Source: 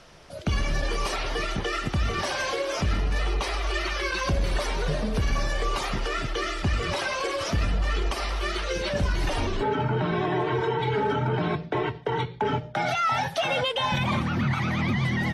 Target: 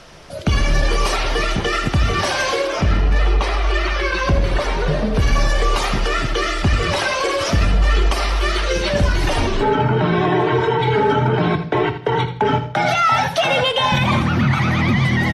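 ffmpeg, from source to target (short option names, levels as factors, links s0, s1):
-filter_complex "[0:a]asettb=1/sr,asplit=3[s0][s1][s2];[s0]atrim=end=2.674[s3];[s1]atrim=start=2.67:end=5.19,asetpts=PTS-STARTPTS,afade=t=in:d=0.004:c=qsin,afade=t=out:st=2.516:d=0.004:c=qsin,lowpass=f=2900:p=1[s4];[s2]atrim=start=5.186[s5];[s3][s4]acrossfade=d=0.004:c1=hsin:c2=qsin[s6];[s6][s5]acrossfade=d=0.004:c1=qsin:c2=hsin,aecho=1:1:81|162|243:0.251|0.0678|0.0183,volume=2.66"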